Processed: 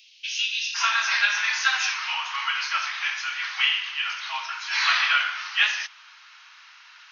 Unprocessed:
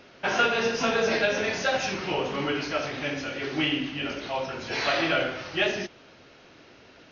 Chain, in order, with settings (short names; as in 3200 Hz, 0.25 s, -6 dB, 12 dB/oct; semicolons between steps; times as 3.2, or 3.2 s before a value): steep high-pass 2600 Hz 48 dB/oct, from 0.74 s 980 Hz; gain +6.5 dB